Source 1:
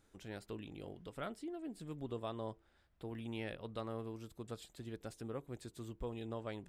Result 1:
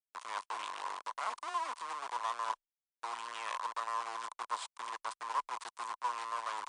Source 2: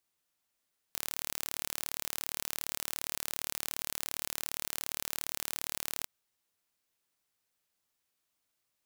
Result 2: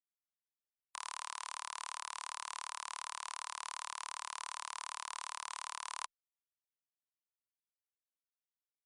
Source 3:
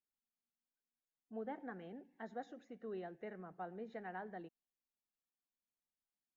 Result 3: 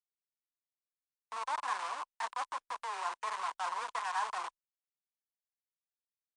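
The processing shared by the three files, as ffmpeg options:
ffmpeg -i in.wav -filter_complex "[0:a]aeval=exprs='if(lt(val(0),0),0.251*val(0),val(0))':channel_layout=same,areverse,acompressor=threshold=-48dB:ratio=20,areverse,acrusher=bits=8:mix=0:aa=0.000001,highpass=frequency=1000:width_type=q:width=9.1,asplit=2[link_01][link_02];[link_02]acrusher=bits=4:mode=log:mix=0:aa=0.000001,volume=-11.5dB[link_03];[link_01][link_03]amix=inputs=2:normalize=0,afreqshift=16,volume=12dB" -ar 22050 -c:a libmp3lame -b:a 96k out.mp3

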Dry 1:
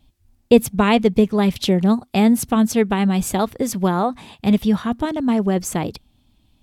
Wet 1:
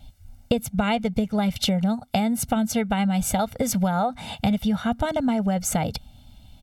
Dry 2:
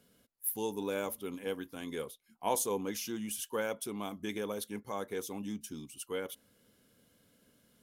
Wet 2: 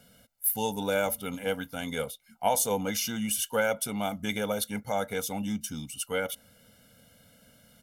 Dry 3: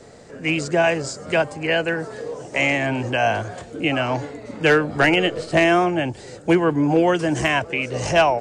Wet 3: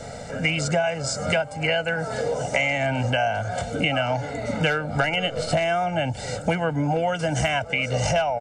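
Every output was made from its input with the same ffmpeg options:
ffmpeg -i in.wav -af "aecho=1:1:1.4:0.86,acompressor=threshold=-27dB:ratio=10,volume=7dB" out.wav

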